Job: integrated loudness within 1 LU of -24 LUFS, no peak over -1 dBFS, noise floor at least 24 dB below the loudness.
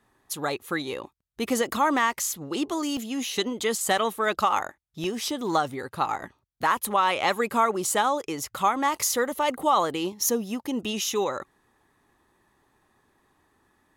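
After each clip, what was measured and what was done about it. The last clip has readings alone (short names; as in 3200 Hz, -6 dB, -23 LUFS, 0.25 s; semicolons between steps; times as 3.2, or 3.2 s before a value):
dropouts 3; longest dropout 1.2 ms; loudness -26.0 LUFS; peak -11.0 dBFS; loudness target -24.0 LUFS
-> interpolate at 2.97/3.76/5.04, 1.2 ms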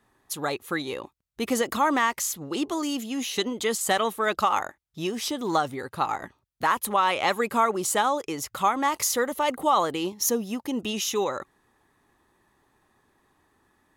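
dropouts 0; loudness -26.0 LUFS; peak -11.0 dBFS; loudness target -24.0 LUFS
-> gain +2 dB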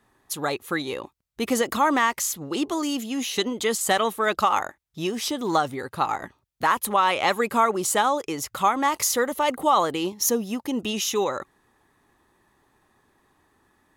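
loudness -24.0 LUFS; peak -9.0 dBFS; noise floor -70 dBFS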